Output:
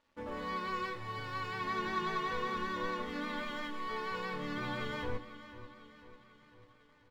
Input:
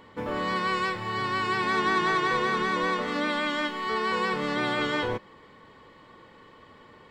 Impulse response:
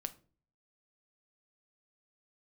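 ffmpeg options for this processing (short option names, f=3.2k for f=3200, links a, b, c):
-filter_complex "[0:a]asubboost=boost=4:cutoff=170,aresample=16000,aresample=44100,aeval=exprs='sgn(val(0))*max(abs(val(0))-0.00355,0)':c=same,aecho=1:1:496|992|1488|1984|2480|2976:0.188|0.105|0.0591|0.0331|0.0185|0.0104[a];[1:a]atrim=start_sample=2205,asetrate=79380,aresample=44100[b];[a][b]afir=irnorm=-1:irlink=0,flanger=delay=3.3:depth=3.5:regen=-50:speed=0.36:shape=sinusoidal"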